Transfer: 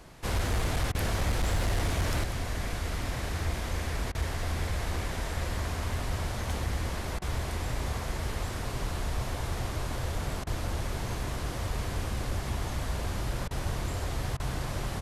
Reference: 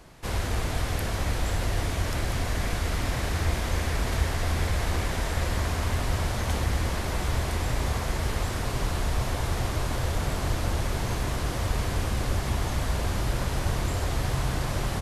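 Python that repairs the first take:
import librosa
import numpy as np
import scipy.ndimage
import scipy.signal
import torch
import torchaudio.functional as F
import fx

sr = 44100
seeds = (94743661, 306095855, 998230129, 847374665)

y = fx.fix_declip(x, sr, threshold_db=-22.5)
y = fx.fix_interpolate(y, sr, at_s=(0.92, 4.12, 7.19, 10.44, 13.48, 14.37), length_ms=27.0)
y = fx.gain(y, sr, db=fx.steps((0.0, 0.0), (2.24, 5.0)))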